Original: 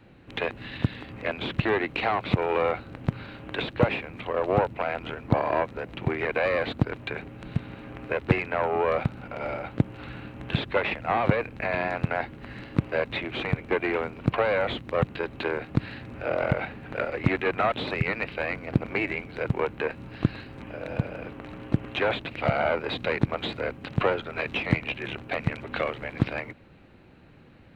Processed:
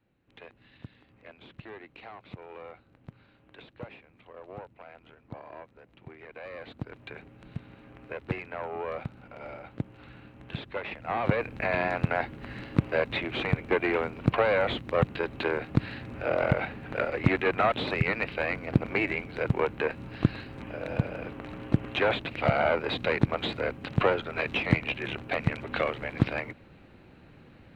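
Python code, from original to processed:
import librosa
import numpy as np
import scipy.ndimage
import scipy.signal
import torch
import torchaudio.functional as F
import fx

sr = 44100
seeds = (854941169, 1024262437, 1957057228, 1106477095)

y = fx.gain(x, sr, db=fx.line((6.24, -20.0), (7.09, -10.0), (10.83, -10.0), (11.51, 0.0)))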